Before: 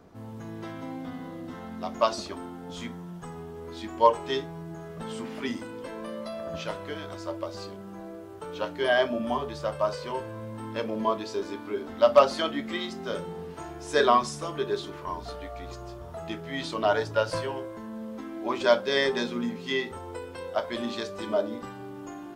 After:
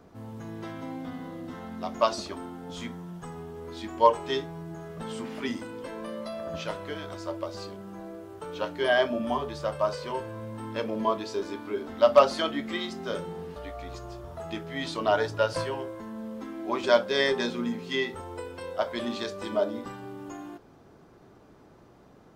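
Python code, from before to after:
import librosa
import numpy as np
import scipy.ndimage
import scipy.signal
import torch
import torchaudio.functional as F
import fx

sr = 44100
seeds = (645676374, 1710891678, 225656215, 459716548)

y = fx.edit(x, sr, fx.cut(start_s=13.56, length_s=1.77), tone=tone)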